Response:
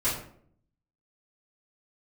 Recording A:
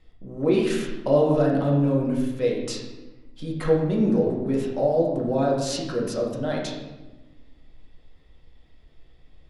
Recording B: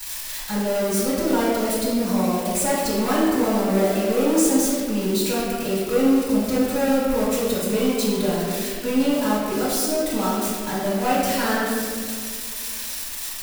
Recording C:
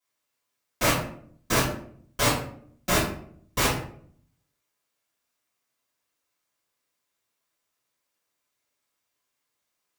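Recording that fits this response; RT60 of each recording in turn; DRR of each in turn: C; 1.1, 2.1, 0.60 s; -3.0, -13.0, -13.5 dB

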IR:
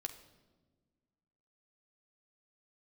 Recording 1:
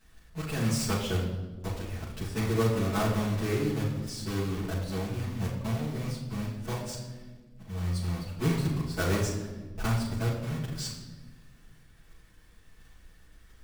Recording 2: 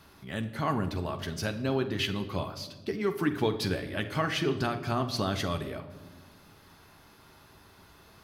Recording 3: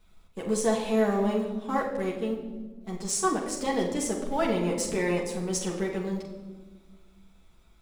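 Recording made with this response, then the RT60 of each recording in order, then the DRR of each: 2; 1.3, 1.4, 1.3 s; -9.0, 6.0, -3.5 dB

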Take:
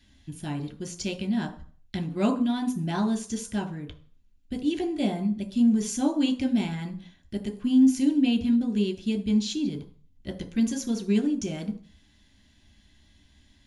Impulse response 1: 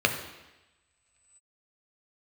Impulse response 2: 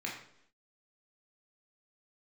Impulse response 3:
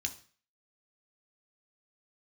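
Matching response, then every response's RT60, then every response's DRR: 3; 1.1, 0.70, 0.40 s; 4.0, -3.0, 4.0 dB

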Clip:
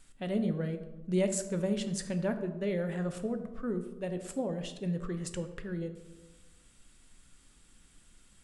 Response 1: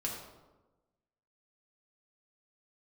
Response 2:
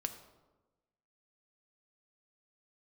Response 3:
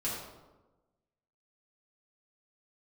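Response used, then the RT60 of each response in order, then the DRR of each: 2; 1.1, 1.2, 1.1 s; -2.5, 7.0, -8.0 dB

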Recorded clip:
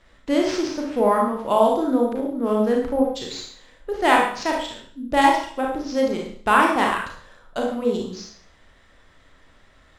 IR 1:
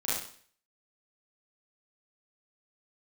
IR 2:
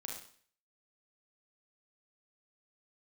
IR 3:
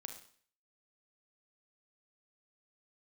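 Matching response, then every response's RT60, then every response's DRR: 2; 0.50, 0.50, 0.50 s; -9.5, -1.0, 5.0 dB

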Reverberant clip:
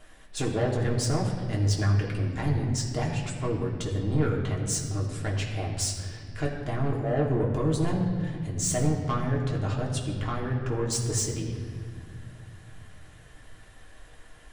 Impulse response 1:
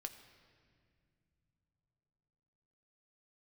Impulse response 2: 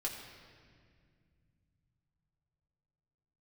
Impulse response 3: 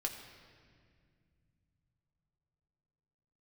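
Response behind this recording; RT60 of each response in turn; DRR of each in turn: 2; not exponential, 2.0 s, 2.1 s; 5.5, -3.0, 1.0 dB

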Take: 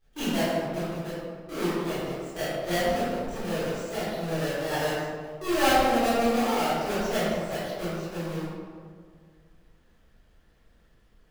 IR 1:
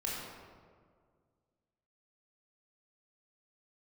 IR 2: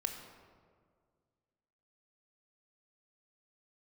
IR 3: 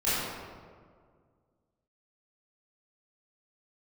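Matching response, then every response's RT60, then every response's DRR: 3; 1.9, 1.9, 1.9 s; -5.0, 4.0, -13.5 dB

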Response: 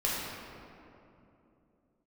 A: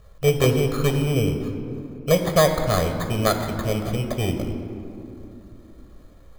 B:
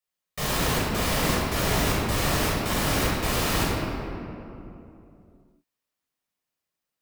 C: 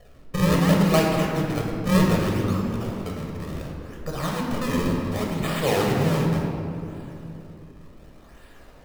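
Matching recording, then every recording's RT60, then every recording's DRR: B; 2.9, 2.9, 2.9 s; 5.5, -6.5, -1.5 dB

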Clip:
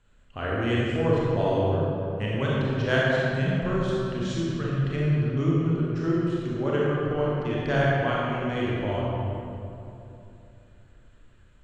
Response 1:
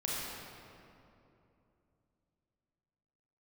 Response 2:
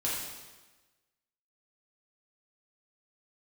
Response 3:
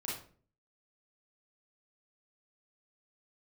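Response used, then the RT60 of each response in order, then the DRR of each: 1; 2.9, 1.2, 0.45 s; -6.0, -7.0, -6.5 dB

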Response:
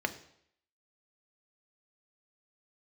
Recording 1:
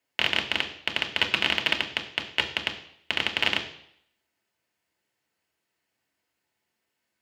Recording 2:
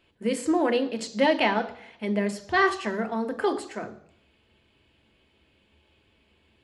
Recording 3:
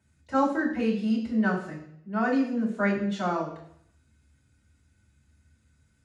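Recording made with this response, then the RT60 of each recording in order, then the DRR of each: 2; 0.70, 0.70, 0.70 s; 2.0, 7.0, -7.5 dB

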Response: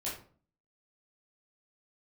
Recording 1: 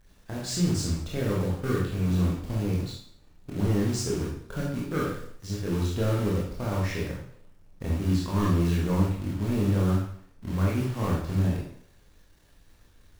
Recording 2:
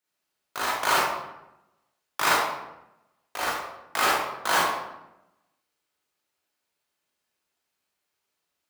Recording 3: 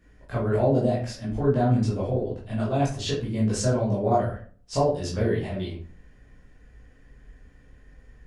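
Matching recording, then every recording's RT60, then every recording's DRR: 3; 0.65, 0.90, 0.45 s; -4.5, -7.5, -7.5 dB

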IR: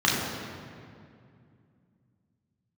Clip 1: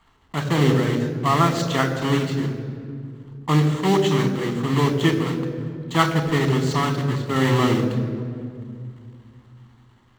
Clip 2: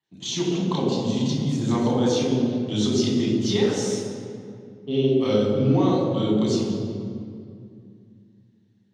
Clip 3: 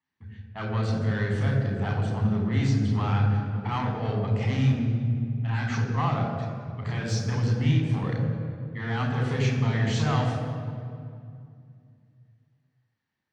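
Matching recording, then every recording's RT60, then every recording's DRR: 2; 2.4, 2.3, 2.3 s; 7.0, -5.5, 0.0 dB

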